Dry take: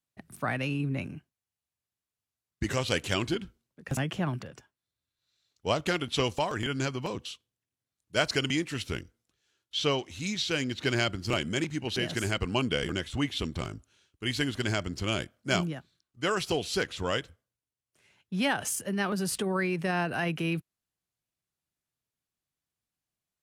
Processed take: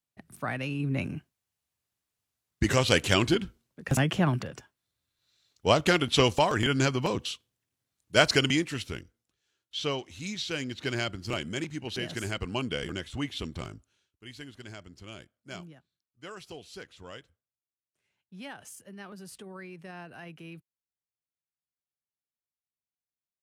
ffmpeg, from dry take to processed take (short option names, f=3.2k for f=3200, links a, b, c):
-af "volume=5.5dB,afade=t=in:st=0.75:d=0.4:silence=0.421697,afade=t=out:st=8.29:d=0.65:silence=0.354813,afade=t=out:st=13.67:d=0.58:silence=0.266073"